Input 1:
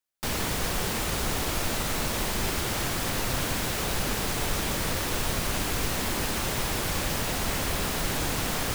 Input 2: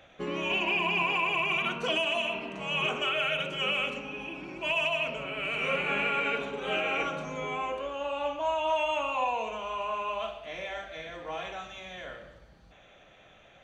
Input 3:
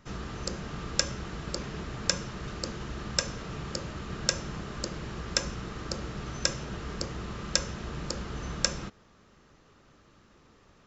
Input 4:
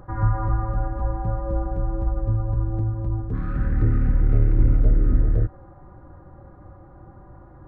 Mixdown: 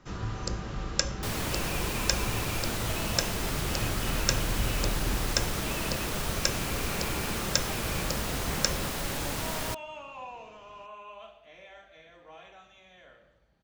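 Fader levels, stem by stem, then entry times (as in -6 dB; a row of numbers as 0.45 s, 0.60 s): -4.5 dB, -13.0 dB, -0.5 dB, -15.0 dB; 1.00 s, 1.00 s, 0.00 s, 0.00 s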